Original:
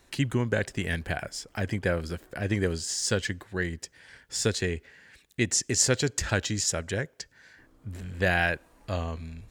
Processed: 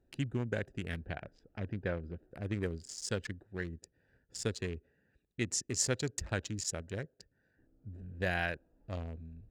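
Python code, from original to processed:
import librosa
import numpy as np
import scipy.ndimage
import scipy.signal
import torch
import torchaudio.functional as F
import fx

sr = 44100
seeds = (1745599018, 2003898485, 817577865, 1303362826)

y = fx.wiener(x, sr, points=41)
y = fx.lowpass(y, sr, hz=4100.0, slope=12, at=(0.99, 2.23))
y = y * 10.0 ** (-8.0 / 20.0)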